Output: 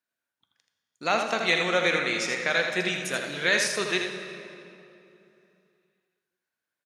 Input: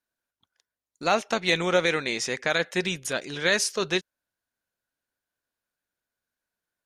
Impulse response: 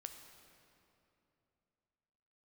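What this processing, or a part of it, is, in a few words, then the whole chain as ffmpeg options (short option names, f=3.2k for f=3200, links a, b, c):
PA in a hall: -filter_complex "[0:a]highpass=110,equalizer=f=2.1k:t=o:w=1.5:g=5,aecho=1:1:81:0.473[a];[1:a]atrim=start_sample=2205[b];[a][b]afir=irnorm=-1:irlink=0,volume=1.5dB"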